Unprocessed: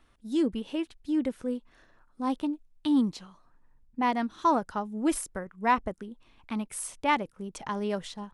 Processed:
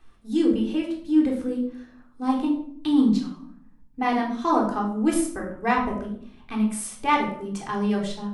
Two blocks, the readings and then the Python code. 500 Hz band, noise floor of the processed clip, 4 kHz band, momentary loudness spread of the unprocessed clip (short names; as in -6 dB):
+5.0 dB, -52 dBFS, +3.5 dB, 12 LU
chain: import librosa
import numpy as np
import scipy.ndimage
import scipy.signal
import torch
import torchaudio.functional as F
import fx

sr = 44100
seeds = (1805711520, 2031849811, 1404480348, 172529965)

y = fx.room_shoebox(x, sr, seeds[0], volume_m3=950.0, walls='furnished', distance_m=3.7)